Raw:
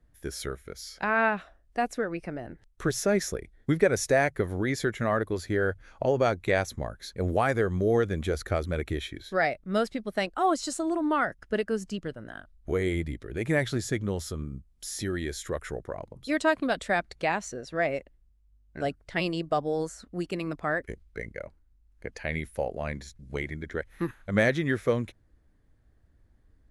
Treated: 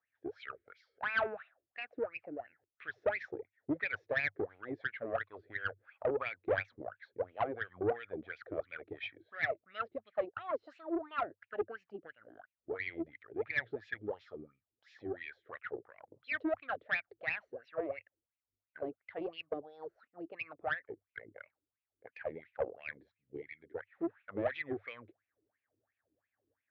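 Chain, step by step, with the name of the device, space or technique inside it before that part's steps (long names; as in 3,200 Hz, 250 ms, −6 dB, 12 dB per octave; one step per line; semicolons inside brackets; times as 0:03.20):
wah-wah guitar rig (LFO wah 2.9 Hz 330–2,600 Hz, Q 8.8; tube saturation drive 29 dB, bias 0.4; loudspeaker in its box 94–3,800 Hz, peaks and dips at 100 Hz +10 dB, 190 Hz −7 dB, 360 Hz −6 dB, 990 Hz −5 dB)
0:23.14–0:23.72: flat-topped bell 920 Hz −12.5 dB
level +6.5 dB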